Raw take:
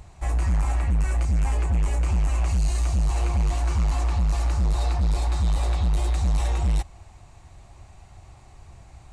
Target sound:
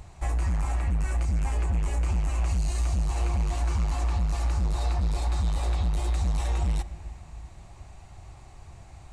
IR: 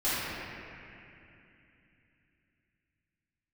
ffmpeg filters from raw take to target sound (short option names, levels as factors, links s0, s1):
-filter_complex "[0:a]acompressor=threshold=0.0708:ratio=6,asplit=2[s0][s1];[1:a]atrim=start_sample=2205[s2];[s1][s2]afir=irnorm=-1:irlink=0,volume=0.0473[s3];[s0][s3]amix=inputs=2:normalize=0"